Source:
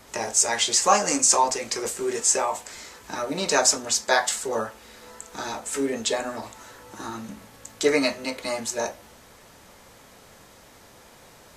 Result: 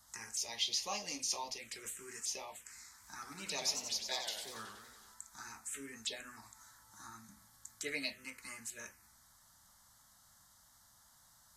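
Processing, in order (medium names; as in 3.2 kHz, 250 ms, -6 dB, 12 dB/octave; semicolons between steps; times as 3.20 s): amplifier tone stack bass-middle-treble 5-5-5; touch-sensitive phaser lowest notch 410 Hz, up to 1.5 kHz, full sweep at -29.5 dBFS; 2.88–5.14 s: modulated delay 93 ms, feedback 65%, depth 213 cents, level -7 dB; trim -2 dB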